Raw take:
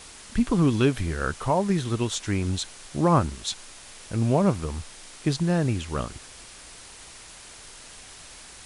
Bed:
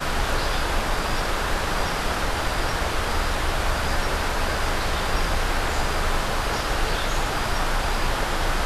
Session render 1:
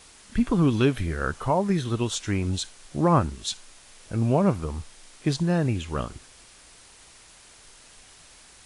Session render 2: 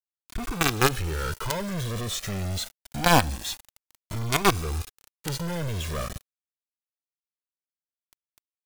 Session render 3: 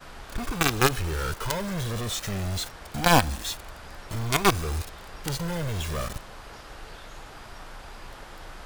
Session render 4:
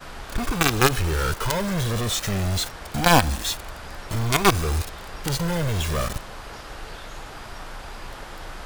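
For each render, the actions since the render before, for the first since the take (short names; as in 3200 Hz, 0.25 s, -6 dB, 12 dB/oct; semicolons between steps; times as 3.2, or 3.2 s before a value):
noise print and reduce 6 dB
companded quantiser 2-bit; cascading flanger rising 0.25 Hz
add bed -19 dB
gain +5.5 dB; limiter -3 dBFS, peak gain reduction 3 dB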